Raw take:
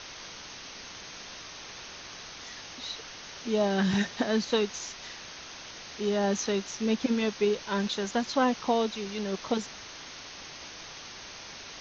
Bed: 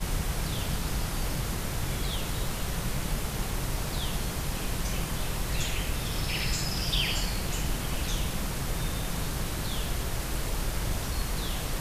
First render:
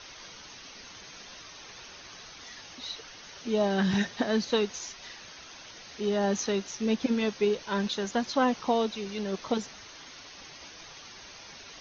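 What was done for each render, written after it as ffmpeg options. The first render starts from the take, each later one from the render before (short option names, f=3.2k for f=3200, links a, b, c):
-af "afftdn=nr=7:nf=-45"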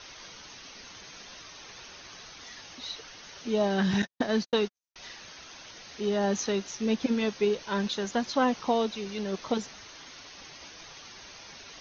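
-filter_complex "[0:a]asettb=1/sr,asplit=3[a][b][c];[a]atrim=end=4.024[d];[b]atrim=start=4.02:end=4.96,asetpts=PTS-STARTPTS,afade=t=in:d=0.004:c=qsin,afade=t=out:st=0.936:d=0.004:c=qsin,agate=range=-58dB:threshold=-33dB:ratio=16:release=100:detection=peak[e];[c]atrim=start=4.956[f];[d][e]acrossfade=d=0.004:c1=hsin:c2=qsin[g];[g][f]acrossfade=d=0.004:c1=qsin:c2=hsin"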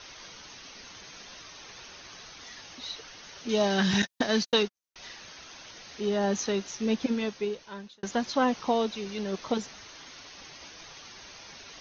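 -filter_complex "[0:a]asettb=1/sr,asplit=3[a][b][c];[a]atrim=end=3.494[d];[b]atrim=start=3.49:end=4.63,asetpts=PTS-STARTPTS,afade=t=in:d=0.004:c=qsin,afade=t=out:st=1.136:d=0.004:c=qsin,highshelf=f=2k:g=9[e];[c]atrim=start=4.626[f];[d][e]acrossfade=d=0.004:c1=hsin:c2=qsin[g];[g][f]acrossfade=d=0.004:c1=qsin:c2=hsin,asplit=2[h][i];[h]atrim=end=8.03,asetpts=PTS-STARTPTS,afade=t=out:st=6.98:d=1.05[j];[i]atrim=start=8.03,asetpts=PTS-STARTPTS,afade=t=in:d=0.004:c=hsin[k];[j][k]concat=n=2:v=0:a=1"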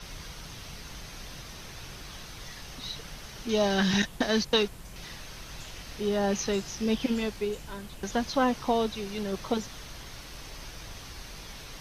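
-filter_complex "[1:a]volume=-14.5dB[a];[0:a][a]amix=inputs=2:normalize=0"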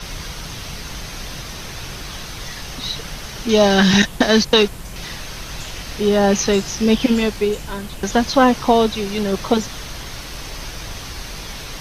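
-af "volume=12dB,alimiter=limit=-1dB:level=0:latency=1"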